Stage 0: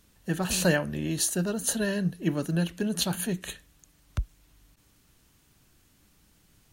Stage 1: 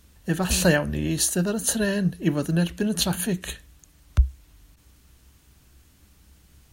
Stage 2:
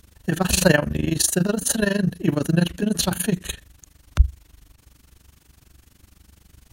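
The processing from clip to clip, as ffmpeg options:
-af "equalizer=f=66:w=3.1:g=14,volume=4dB"
-af "tremolo=f=24:d=0.889,volume=6.5dB"

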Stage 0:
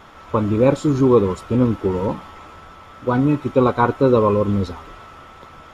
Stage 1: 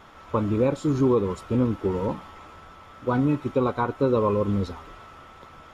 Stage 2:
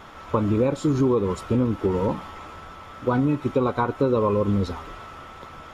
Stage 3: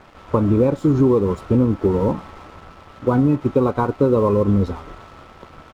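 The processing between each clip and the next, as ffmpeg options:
-af "alimiter=limit=-7.5dB:level=0:latency=1:release=235,volume=-5dB"
-af "acompressor=threshold=-25dB:ratio=2.5,volume=5.5dB"
-af "aresample=32000,aresample=44100,tiltshelf=f=1.5k:g=6,aeval=exprs='sgn(val(0))*max(abs(val(0))-0.00708,0)':c=same"

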